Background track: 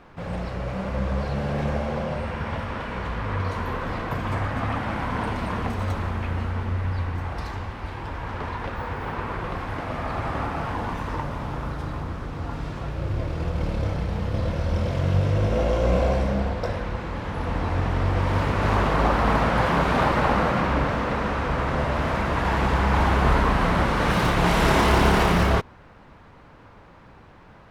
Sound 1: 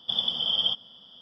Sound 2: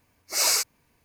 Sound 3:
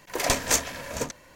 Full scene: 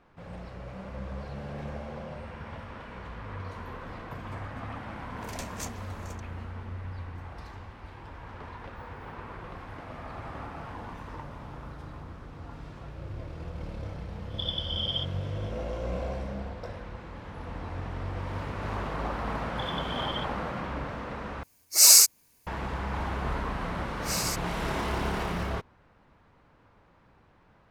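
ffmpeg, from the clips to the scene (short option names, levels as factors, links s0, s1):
-filter_complex "[1:a]asplit=2[s0][s1];[2:a]asplit=2[s2][s3];[0:a]volume=0.251[s4];[s1]tiltshelf=f=1500:g=9.5[s5];[s2]bass=f=250:g=-1,treble=f=4000:g=14[s6];[s3]alimiter=limit=0.224:level=0:latency=1:release=71[s7];[s4]asplit=2[s8][s9];[s8]atrim=end=21.434[s10];[s6]atrim=end=1.04,asetpts=PTS-STARTPTS,volume=0.631[s11];[s9]atrim=start=22.466[s12];[3:a]atrim=end=1.35,asetpts=PTS-STARTPTS,volume=0.141,afade=t=in:d=0.004:c=hsin,afade=t=out:st=1.346:d=0.004:c=hsin,adelay=224469S[s13];[s0]atrim=end=1.21,asetpts=PTS-STARTPTS,volume=0.473,afade=t=in:d=0.004:c=hsin,afade=t=out:st=1.206:d=0.004:c=hsin,adelay=14300[s14];[s5]atrim=end=1.21,asetpts=PTS-STARTPTS,volume=0.447,afade=t=in:d=0.004:c=hsin,afade=t=out:st=1.206:d=0.004:c=hsin,adelay=19500[s15];[s7]atrim=end=1.04,asetpts=PTS-STARTPTS,volume=0.398,afade=t=in:d=0.004:c=hsin,afade=t=out:st=1.036:d=0.004:c=hsin,adelay=23730[s16];[s10][s11]acrossfade=d=0.004:c1=hsin:c2=hsin[s17];[s17][s12]acrossfade=d=0.004:c1=hsin:c2=hsin[s18];[s18][s13][s14][s15][s16]amix=inputs=5:normalize=0"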